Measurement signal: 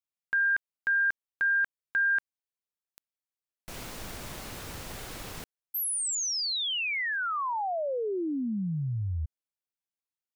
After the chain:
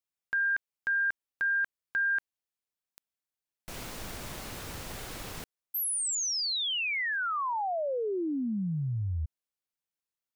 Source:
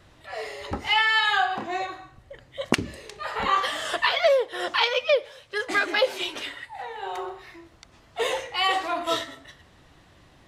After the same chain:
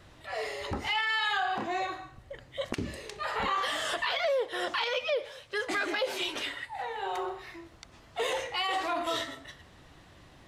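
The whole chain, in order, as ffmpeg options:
ffmpeg -i in.wav -af "acompressor=threshold=-24dB:ratio=6:attack=0.4:release=51:knee=6:detection=rms" out.wav

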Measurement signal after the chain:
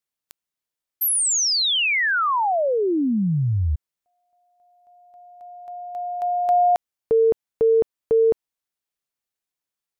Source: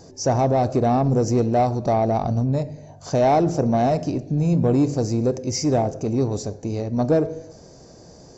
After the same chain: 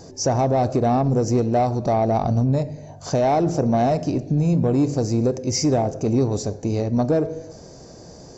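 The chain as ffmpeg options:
ffmpeg -i in.wav -af "alimiter=limit=-15.5dB:level=0:latency=1:release=379,volume=3.5dB" out.wav

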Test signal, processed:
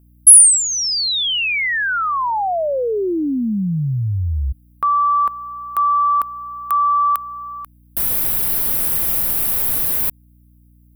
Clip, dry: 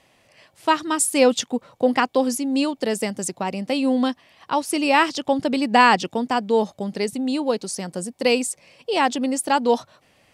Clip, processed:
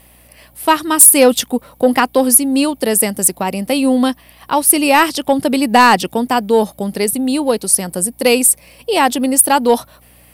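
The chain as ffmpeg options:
ffmpeg -i in.wav -af "aeval=exprs='val(0)+0.00158*(sin(2*PI*60*n/s)+sin(2*PI*2*60*n/s)/2+sin(2*PI*3*60*n/s)/3+sin(2*PI*4*60*n/s)/4+sin(2*PI*5*60*n/s)/5)':channel_layout=same,aexciter=amount=12.7:drive=3.5:freq=9500,aeval=exprs='1.41*sin(PI/2*2.24*val(0)/1.41)':channel_layout=same,volume=-4dB" out.wav

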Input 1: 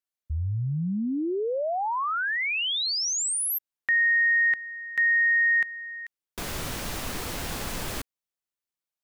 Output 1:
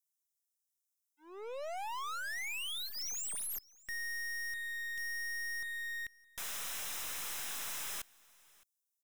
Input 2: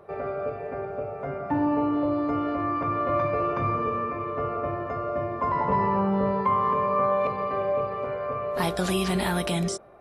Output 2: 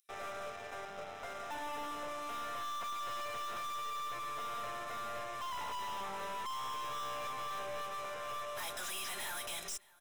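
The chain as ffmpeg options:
ffmpeg -i in.wav -filter_complex "[0:a]highpass=1100,asplit=2[link_01][link_02];[link_02]alimiter=level_in=1.5dB:limit=-24dB:level=0:latency=1:release=258,volume=-1.5dB,volume=-2dB[link_03];[link_01][link_03]amix=inputs=2:normalize=0,acontrast=84,acrossover=split=4900[link_04][link_05];[link_04]aeval=exprs='sgn(val(0))*max(abs(val(0))-0.0168,0)':channel_layout=same[link_06];[link_06][link_05]amix=inputs=2:normalize=0,aeval=exprs='(tanh(63.1*val(0)+0.45)-tanh(0.45))/63.1':channel_layout=same,asuperstop=centerf=4500:order=4:qfactor=7,aecho=1:1:615:0.0631,volume=-3.5dB" out.wav

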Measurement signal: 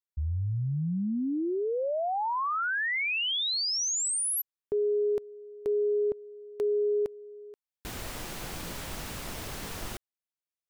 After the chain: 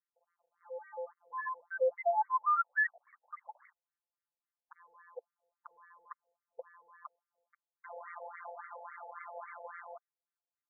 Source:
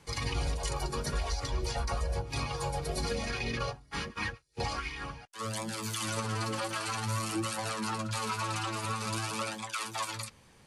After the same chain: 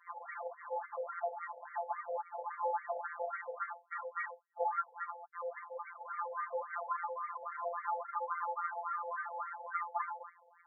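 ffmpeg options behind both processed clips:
ffmpeg -i in.wav -af "adynamicequalizer=threshold=0.00891:dfrequency=360:dqfactor=1.1:tfrequency=360:tqfactor=1.1:attack=5:release=100:ratio=0.4:range=3.5:mode=boostabove:tftype=bell,afftfilt=real='hypot(re,im)*cos(PI*b)':imag='0':win_size=1024:overlap=0.75,aresample=11025,volume=33dB,asoftclip=hard,volume=-33dB,aresample=44100,afftfilt=real='re*between(b*sr/1024,620*pow(1600/620,0.5+0.5*sin(2*PI*3.6*pts/sr))/1.41,620*pow(1600/620,0.5+0.5*sin(2*PI*3.6*pts/sr))*1.41)':imag='im*between(b*sr/1024,620*pow(1600/620,0.5+0.5*sin(2*PI*3.6*pts/sr))/1.41,620*pow(1600/620,0.5+0.5*sin(2*PI*3.6*pts/sr))*1.41)':win_size=1024:overlap=0.75,volume=8.5dB" out.wav

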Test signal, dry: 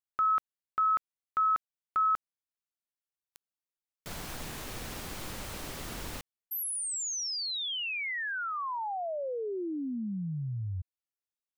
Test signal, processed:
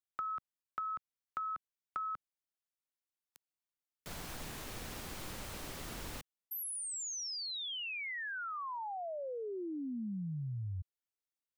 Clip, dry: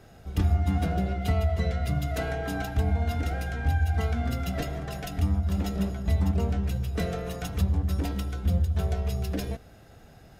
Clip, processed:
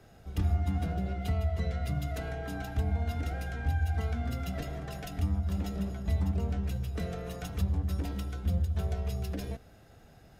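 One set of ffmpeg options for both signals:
ffmpeg -i in.wav -filter_complex "[0:a]acrossover=split=200[link_01][link_02];[link_02]acompressor=threshold=-35dB:ratio=4:attack=19:release=102:knee=2.83:detection=peak[link_03];[link_01][link_03]amix=inputs=2:normalize=0,volume=-4.5dB" out.wav

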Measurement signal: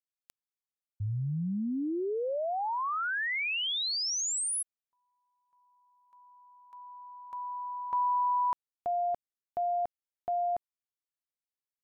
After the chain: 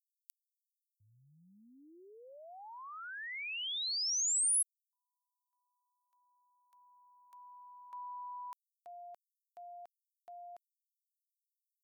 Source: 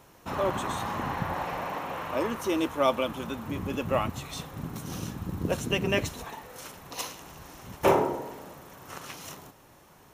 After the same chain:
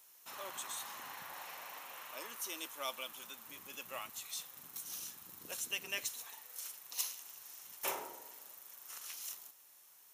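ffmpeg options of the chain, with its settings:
ffmpeg -i in.wav -af "aderivative" out.wav

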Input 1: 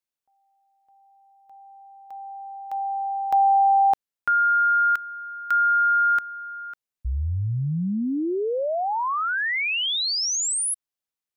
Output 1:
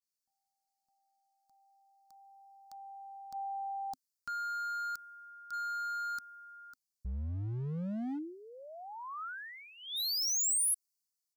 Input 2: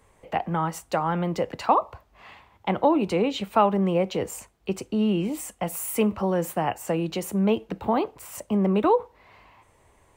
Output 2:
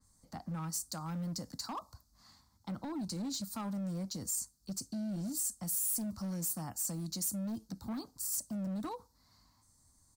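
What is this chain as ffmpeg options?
ffmpeg -i in.wav -af "firequalizer=gain_entry='entry(160,0);entry(260,2);entry(390,-19);entry(680,-14);entry(1300,-7);entry(2700,-24);entry(4400,12);entry(11000,8)':delay=0.05:min_phase=1,alimiter=limit=-21.5dB:level=0:latency=1:release=34,asoftclip=type=hard:threshold=-26.5dB,adynamicequalizer=threshold=0.00447:dfrequency=5400:dqfactor=0.7:tfrequency=5400:tqfactor=0.7:attack=5:release=100:ratio=0.4:range=3.5:mode=boostabove:tftype=highshelf,volume=-8.5dB" out.wav

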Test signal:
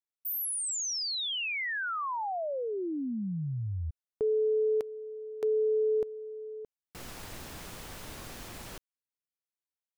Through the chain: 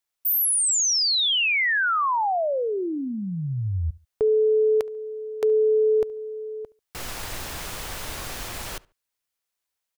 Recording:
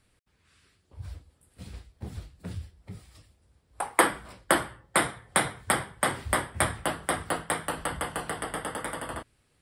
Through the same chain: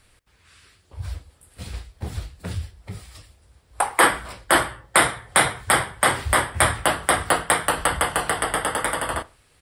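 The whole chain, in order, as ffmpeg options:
ffmpeg -i in.wav -filter_complex "[0:a]equalizer=frequency=210:width=0.64:gain=-7.5,asplit=2[link_01][link_02];[link_02]adelay=71,lowpass=frequency=2800:poles=1,volume=-22dB,asplit=2[link_03][link_04];[link_04]adelay=71,lowpass=frequency=2800:poles=1,volume=0.29[link_05];[link_03][link_05]amix=inputs=2:normalize=0[link_06];[link_01][link_06]amix=inputs=2:normalize=0,alimiter=level_in=12.5dB:limit=-1dB:release=50:level=0:latency=1,volume=-1dB" out.wav

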